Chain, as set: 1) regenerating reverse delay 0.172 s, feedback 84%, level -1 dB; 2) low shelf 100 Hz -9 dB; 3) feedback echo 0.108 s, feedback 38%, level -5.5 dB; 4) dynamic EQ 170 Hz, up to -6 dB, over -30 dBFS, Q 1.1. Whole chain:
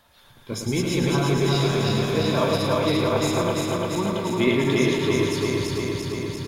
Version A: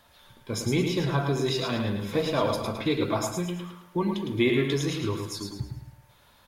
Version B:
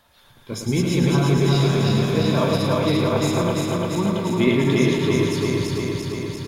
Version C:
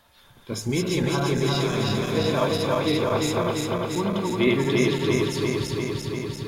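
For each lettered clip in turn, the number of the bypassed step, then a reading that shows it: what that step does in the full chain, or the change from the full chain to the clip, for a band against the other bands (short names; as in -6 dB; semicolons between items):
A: 1, momentary loudness spread change +4 LU; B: 4, loudness change +2.5 LU; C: 3, loudness change -1.5 LU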